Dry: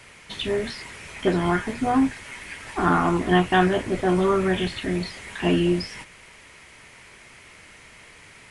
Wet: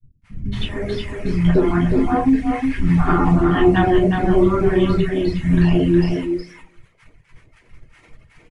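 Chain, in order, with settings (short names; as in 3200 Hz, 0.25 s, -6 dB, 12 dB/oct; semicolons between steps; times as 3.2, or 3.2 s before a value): tilt -3 dB/oct; shoebox room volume 53 m³, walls mixed, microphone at 0.49 m; expander -30 dBFS; 2.15–2.72 bell 1600 Hz +3.5 dB 2.1 oct; in parallel at -2 dB: compressor, threshold -28 dBFS, peak gain reduction 20.5 dB; on the sum: three bands offset in time lows, highs, mids 0.22/0.3 s, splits 230/770 Hz; reverb removal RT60 1.2 s; on a send: echo 0.364 s -5 dB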